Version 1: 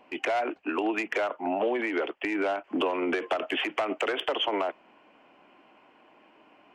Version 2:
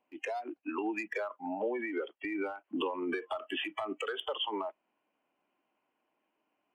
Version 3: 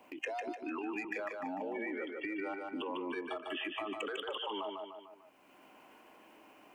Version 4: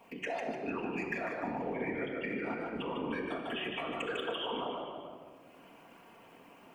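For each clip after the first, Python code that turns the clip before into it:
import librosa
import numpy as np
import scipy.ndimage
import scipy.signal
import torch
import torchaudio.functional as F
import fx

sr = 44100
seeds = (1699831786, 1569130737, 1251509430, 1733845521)

y1 = fx.noise_reduce_blind(x, sr, reduce_db=17)
y1 = y1 * librosa.db_to_amplitude(-5.5)
y2 = fx.level_steps(y1, sr, step_db=14)
y2 = fx.echo_feedback(y2, sr, ms=149, feedback_pct=35, wet_db=-5)
y2 = fx.band_squash(y2, sr, depth_pct=70)
y2 = y2 * librosa.db_to_amplitude(2.5)
y3 = fx.whisperise(y2, sr, seeds[0])
y3 = fx.room_shoebox(y3, sr, seeds[1], volume_m3=2800.0, walls='mixed', distance_m=1.7)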